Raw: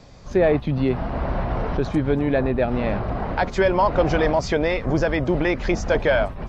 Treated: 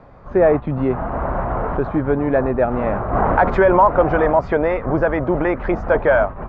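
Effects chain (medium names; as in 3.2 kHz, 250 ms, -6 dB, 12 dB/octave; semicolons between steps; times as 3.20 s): FFT filter 190 Hz 0 dB, 1.3 kHz +8 dB, 5.8 kHz -25 dB; 3.13–3.83 s: level flattener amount 50%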